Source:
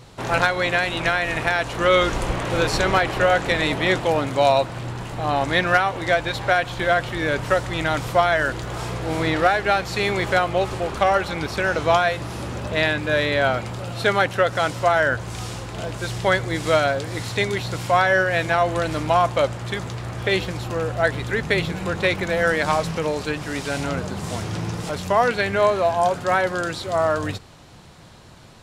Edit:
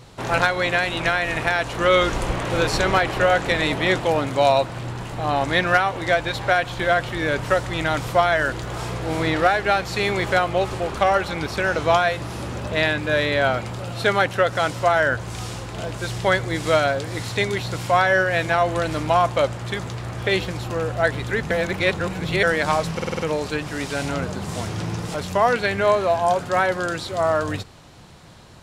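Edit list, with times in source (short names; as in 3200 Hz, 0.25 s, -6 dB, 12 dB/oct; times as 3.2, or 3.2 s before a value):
21.51–22.43 reverse
22.94 stutter 0.05 s, 6 plays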